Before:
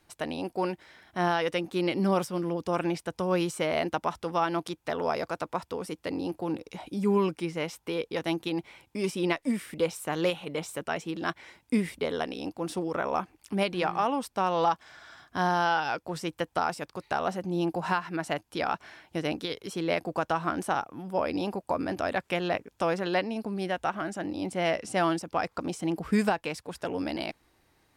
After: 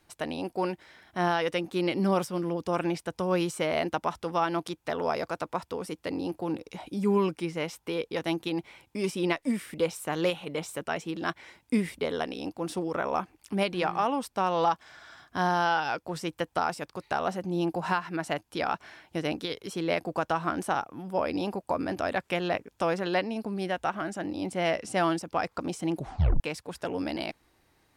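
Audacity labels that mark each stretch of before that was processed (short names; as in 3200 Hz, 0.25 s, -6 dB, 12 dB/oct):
25.940000	25.940000	tape stop 0.46 s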